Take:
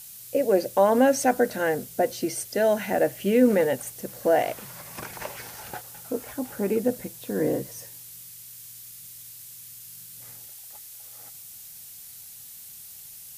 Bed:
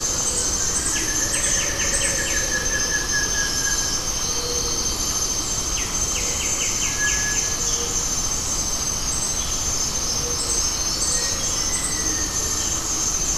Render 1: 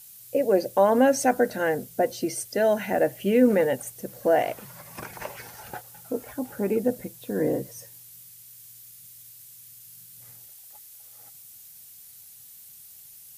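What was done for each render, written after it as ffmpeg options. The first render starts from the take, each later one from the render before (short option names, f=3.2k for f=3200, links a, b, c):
-af "afftdn=nr=6:nf=-44"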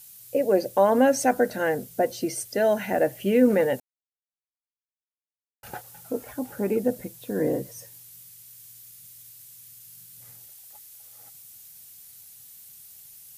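-filter_complex "[0:a]asplit=3[a][b][c];[a]atrim=end=3.8,asetpts=PTS-STARTPTS,afade=t=out:st=3.796:d=0.004:c=hsin[d];[b]atrim=start=3.8:end=5.63,asetpts=PTS-STARTPTS,volume=0[e];[c]atrim=start=5.63,asetpts=PTS-STARTPTS,afade=t=in:d=0.004:c=hsin[f];[d][e][f]concat=n=3:v=0:a=1"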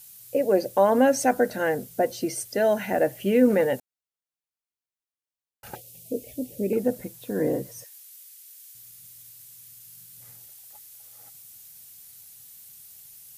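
-filter_complex "[0:a]asettb=1/sr,asplit=3[a][b][c];[a]atrim=end=5.754[d];[b]atrim=start=5.75:end=6.73,asetpts=PTS-STARTPTS,afade=t=in:d=0.004:c=qsin,afade=t=out:st=0.976:d=0.004:c=qsin,asuperstop=centerf=1200:order=8:qfactor=0.67[e];[c]atrim=start=6.726[f];[d][e]acrossfade=d=0.004:c1=hsin:c2=qsin[g];[g][f]acrossfade=d=0.004:c1=qsin:c2=hsin,asettb=1/sr,asplit=3[h][i][j];[h]atrim=end=7.844[k];[i]atrim=start=7.84:end=8.75,asetpts=PTS-STARTPTS,afade=t=in:d=0.004:c=qsin,afade=t=out:st=0.906:d=0.004:c=qsin,highpass=1.3k[l];[j]atrim=start=8.746[m];[k][l]acrossfade=d=0.004:c1=hsin:c2=qsin[n];[n][m]acrossfade=d=0.004:c1=qsin:c2=hsin"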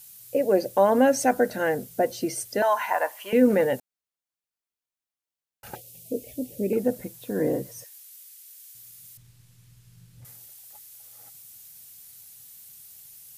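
-filter_complex "[0:a]asettb=1/sr,asplit=3[a][b][c];[a]atrim=end=2.624[d];[b]atrim=start=2.62:end=3.33,asetpts=PTS-STARTPTS,afade=t=in:d=0.004:c=qsin,afade=t=out:st=0.706:d=0.004:c=qsin,highpass=f=1k:t=q:w=11[e];[c]atrim=start=3.326[f];[d][e]acrossfade=d=0.004:c1=hsin:c2=qsin[g];[g][f]acrossfade=d=0.004:c1=qsin:c2=hsin,asettb=1/sr,asplit=3[h][i][j];[h]atrim=end=9.174[k];[i]atrim=start=9.17:end=10.25,asetpts=PTS-STARTPTS,afade=t=in:d=0.004:c=qsin,afade=t=out:st=1.076:d=0.004:c=qsin,aemphasis=mode=reproduction:type=riaa[l];[j]atrim=start=10.246[m];[k][l]acrossfade=d=0.004:c1=hsin:c2=qsin[n];[n][m]acrossfade=d=0.004:c1=qsin:c2=hsin"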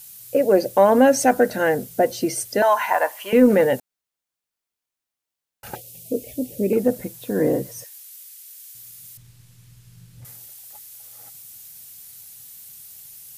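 -af "acontrast=31"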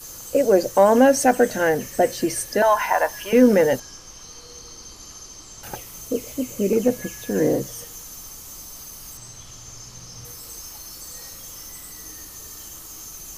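-filter_complex "[1:a]volume=-18dB[a];[0:a][a]amix=inputs=2:normalize=0"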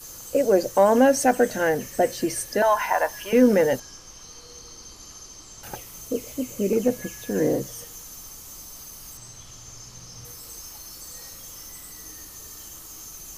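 -af "volume=-2.5dB"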